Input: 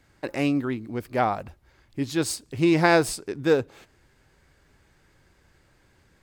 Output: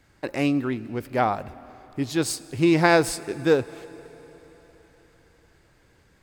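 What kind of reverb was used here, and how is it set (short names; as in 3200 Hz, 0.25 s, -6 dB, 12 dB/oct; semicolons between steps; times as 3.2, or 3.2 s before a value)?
plate-style reverb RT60 4.3 s, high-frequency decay 0.9×, DRR 18 dB; gain +1 dB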